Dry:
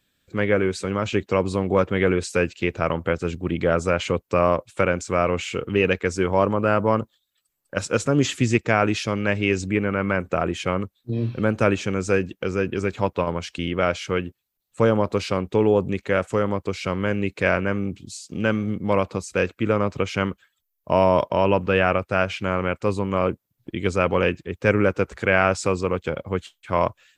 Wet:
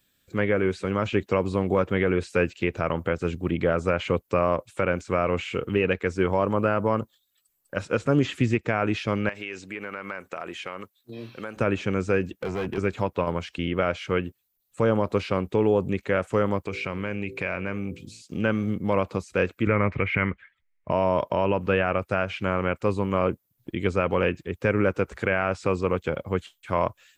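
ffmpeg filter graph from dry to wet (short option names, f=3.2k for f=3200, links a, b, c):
-filter_complex "[0:a]asettb=1/sr,asplit=3[a][b][c];[a]atrim=end=9.294[d];[b]atrim=start=9.29:end=11.57,asetpts=PTS-STARTPTS,afade=t=in:d=0.004:c=qsin,afade=t=out:st=2.276:d=0.004:c=qsin,highpass=f=920:p=1,acompressor=threshold=-28dB:ratio=5:attack=3.2:release=140:knee=1:detection=peak[e];[c]atrim=start=11.566[f];[d][e]acrossfade=d=0.004:c1=hsin:c2=qsin[g];[g][f]acrossfade=d=0.004:c1=qsin:c2=hsin,asettb=1/sr,asplit=3[h][i][j];[h]atrim=end=12.314[k];[i]atrim=start=12.31:end=12.78,asetpts=PTS-STARTPTS,afade=t=in:d=0.004:c=qsin,afade=t=out:st=0.466:d=0.004:c=qsin,highpass=f=73:w=0.5412,highpass=f=73:w=1.3066,volume=24dB,asoftclip=hard,volume=-24dB[l];[j]atrim=start=12.776[m];[k][l]acrossfade=d=0.004:c1=hsin:c2=qsin[n];[n][m]acrossfade=d=0.004:c1=qsin:c2=hsin,asettb=1/sr,asplit=3[o][p][q];[o]atrim=end=16.654[r];[p]atrim=start=16.65:end=18.22,asetpts=PTS-STARTPTS,afade=t=in:d=0.004:c=qsin,afade=t=out:st=1.566:d=0.004:c=qsin,equalizer=f=2.4k:t=o:w=0.22:g=10,bandreject=f=55.52:t=h:w=4,bandreject=f=111.04:t=h:w=4,bandreject=f=166.56:t=h:w=4,bandreject=f=222.08:t=h:w=4,bandreject=f=277.6:t=h:w=4,bandreject=f=333.12:t=h:w=4,bandreject=f=388.64:t=h:w=4,bandreject=f=444.16:t=h:w=4,bandreject=f=499.68:t=h:w=4,acompressor=threshold=-25dB:ratio=3:attack=3.2:release=140:knee=1:detection=peak[s];[q]atrim=start=18.216[t];[r][s]acrossfade=d=0.004:c1=hsin:c2=qsin[u];[u][t]acrossfade=d=0.004:c1=qsin:c2=hsin,asettb=1/sr,asplit=3[v][w][x];[v]atrim=end=19.674[y];[w]atrim=start=19.67:end=20.91,asetpts=PTS-STARTPTS,afade=t=in:d=0.004:c=qsin,afade=t=out:st=1.236:d=0.004:c=qsin,lowpass=f=2.1k:t=q:w=6.1,lowshelf=f=130:g=10,bandreject=f=760:w=20[z];[x]atrim=start=20.906[aa];[y][z]acrossfade=d=0.004:c1=hsin:c2=qsin[ab];[ab][aa]acrossfade=d=0.004:c1=qsin:c2=hsin,acrossover=split=3400[ac][ad];[ad]acompressor=threshold=-53dB:ratio=4:attack=1:release=60[ae];[ac][ae]amix=inputs=2:normalize=0,highshelf=f=8.7k:g=9.5,alimiter=limit=-9.5dB:level=0:latency=1:release=149,volume=-1dB"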